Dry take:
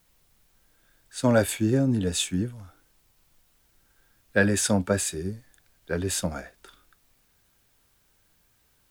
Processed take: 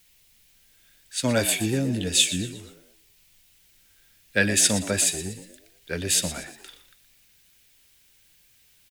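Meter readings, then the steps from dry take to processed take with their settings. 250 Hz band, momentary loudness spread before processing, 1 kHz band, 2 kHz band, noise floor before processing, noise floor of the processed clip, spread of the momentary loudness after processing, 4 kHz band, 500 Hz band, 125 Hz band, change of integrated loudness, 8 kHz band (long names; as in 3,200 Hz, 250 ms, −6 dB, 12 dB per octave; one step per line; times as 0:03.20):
−2.5 dB, 13 LU, −3.0 dB, +2.5 dB, −66 dBFS, −60 dBFS, 17 LU, +8.5 dB, −3.0 dB, −2.5 dB, +2.5 dB, +7.5 dB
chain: high shelf with overshoot 1,700 Hz +9.5 dB, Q 1.5
echo with shifted repeats 119 ms, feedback 41%, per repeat +74 Hz, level −13 dB
level −2.5 dB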